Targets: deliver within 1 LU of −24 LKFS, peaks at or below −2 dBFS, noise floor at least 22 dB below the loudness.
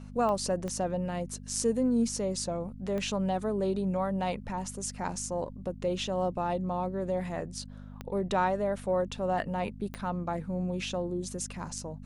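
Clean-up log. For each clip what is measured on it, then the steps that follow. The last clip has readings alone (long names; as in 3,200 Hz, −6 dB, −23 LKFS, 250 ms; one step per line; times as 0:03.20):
number of clicks 5; mains hum 50 Hz; hum harmonics up to 250 Hz; level of the hum −43 dBFS; integrated loudness −32.0 LKFS; sample peak −13.5 dBFS; target loudness −24.0 LKFS
→ click removal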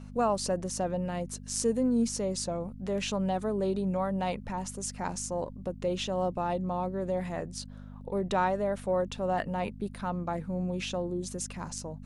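number of clicks 0; mains hum 50 Hz; hum harmonics up to 250 Hz; level of the hum −43 dBFS
→ hum removal 50 Hz, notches 5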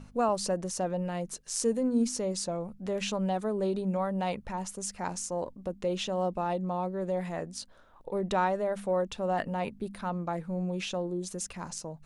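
mains hum none found; integrated loudness −32.0 LKFS; sample peak −14.0 dBFS; target loudness −24.0 LKFS
→ level +8 dB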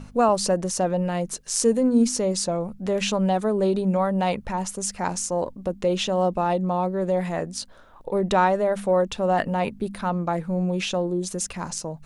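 integrated loudness −24.0 LKFS; sample peak −6.0 dBFS; background noise floor −47 dBFS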